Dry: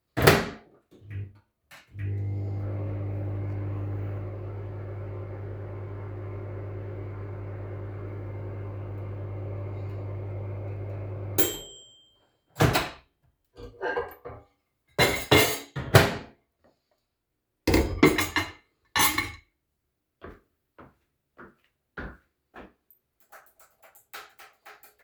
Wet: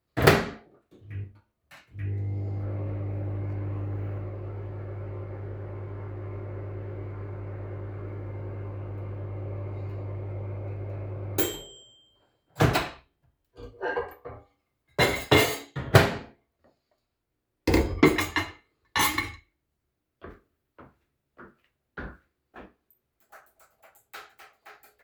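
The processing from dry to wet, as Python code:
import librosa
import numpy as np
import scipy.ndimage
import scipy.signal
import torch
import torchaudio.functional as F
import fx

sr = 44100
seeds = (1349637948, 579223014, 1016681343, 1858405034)

y = fx.high_shelf(x, sr, hz=4400.0, db=-5.0)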